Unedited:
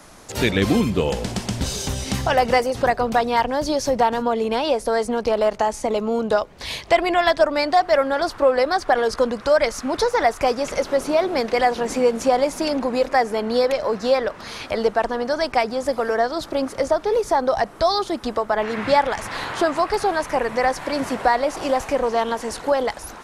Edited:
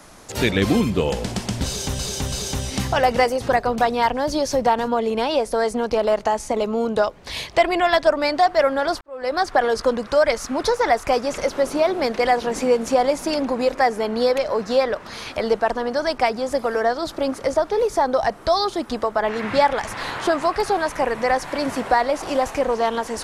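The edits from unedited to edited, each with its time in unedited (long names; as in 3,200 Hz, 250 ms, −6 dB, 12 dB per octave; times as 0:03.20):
0:01.66–0:01.99: repeat, 3 plays
0:08.35–0:08.71: fade in quadratic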